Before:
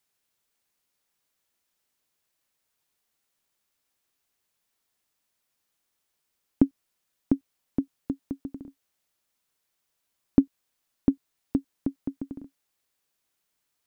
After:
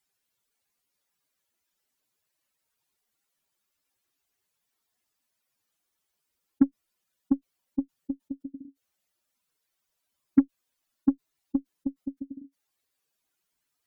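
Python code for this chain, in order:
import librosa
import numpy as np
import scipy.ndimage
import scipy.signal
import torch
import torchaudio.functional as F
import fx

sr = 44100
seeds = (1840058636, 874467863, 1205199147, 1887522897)

y = fx.spec_expand(x, sr, power=2.2)
y = fx.cheby_harmonics(y, sr, harmonics=(7, 8), levels_db=(-32, -34), full_scale_db=-7.0)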